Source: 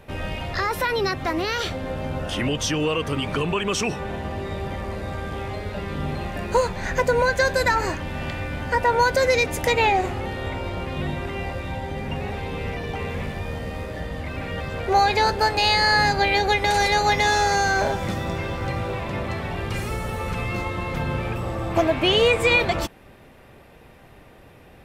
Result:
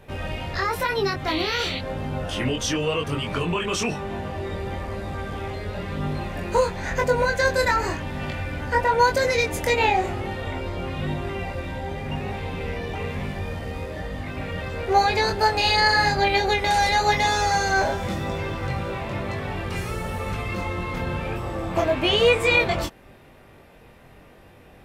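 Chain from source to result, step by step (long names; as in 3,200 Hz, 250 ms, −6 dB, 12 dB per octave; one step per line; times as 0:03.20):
sound drawn into the spectrogram noise, 0:01.27–0:01.79, 1,900–4,600 Hz −30 dBFS
chorus effect 0.98 Hz, delay 20 ms, depth 3.5 ms
level +2 dB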